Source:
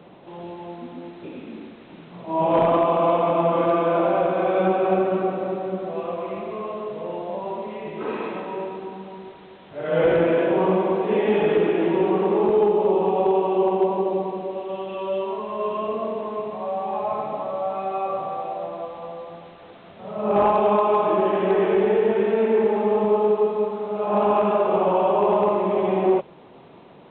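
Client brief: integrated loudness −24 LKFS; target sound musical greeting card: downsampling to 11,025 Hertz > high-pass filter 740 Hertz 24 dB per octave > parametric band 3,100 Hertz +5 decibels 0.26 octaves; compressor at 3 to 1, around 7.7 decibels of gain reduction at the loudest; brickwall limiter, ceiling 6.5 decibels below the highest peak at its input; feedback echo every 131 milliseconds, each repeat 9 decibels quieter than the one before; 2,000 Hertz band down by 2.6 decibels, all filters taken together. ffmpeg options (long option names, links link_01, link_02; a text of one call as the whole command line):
ffmpeg -i in.wav -af "equalizer=frequency=2000:width_type=o:gain=-4,acompressor=threshold=-26dB:ratio=3,alimiter=limit=-23.5dB:level=0:latency=1,aecho=1:1:131|262|393|524:0.355|0.124|0.0435|0.0152,aresample=11025,aresample=44100,highpass=frequency=740:width=0.5412,highpass=frequency=740:width=1.3066,equalizer=frequency=3100:width_type=o:width=0.26:gain=5,volume=14dB" out.wav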